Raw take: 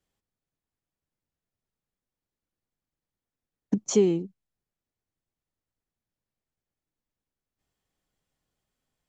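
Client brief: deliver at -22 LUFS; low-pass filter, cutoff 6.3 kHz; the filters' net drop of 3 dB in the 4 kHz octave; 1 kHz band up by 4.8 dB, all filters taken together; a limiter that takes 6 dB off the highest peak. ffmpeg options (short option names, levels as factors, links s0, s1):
-af "lowpass=6300,equalizer=f=1000:t=o:g=6.5,equalizer=f=4000:t=o:g=-3.5,volume=2,alimiter=limit=0.316:level=0:latency=1"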